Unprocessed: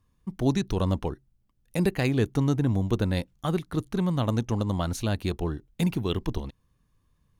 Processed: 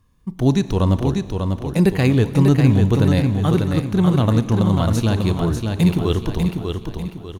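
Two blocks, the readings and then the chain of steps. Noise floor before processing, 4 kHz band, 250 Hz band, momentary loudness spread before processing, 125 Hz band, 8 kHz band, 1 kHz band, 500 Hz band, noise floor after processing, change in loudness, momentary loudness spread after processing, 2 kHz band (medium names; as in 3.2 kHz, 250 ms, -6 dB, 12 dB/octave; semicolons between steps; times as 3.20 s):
-69 dBFS, +7.0 dB, +10.0 dB, 9 LU, +11.0 dB, +6.5 dB, +8.0 dB, +8.5 dB, -38 dBFS, +9.5 dB, 8 LU, +7.0 dB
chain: feedback delay 595 ms, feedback 37%, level -5 dB; harmonic-percussive split harmonic +6 dB; Schroeder reverb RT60 2.1 s, combs from 28 ms, DRR 14.5 dB; trim +4 dB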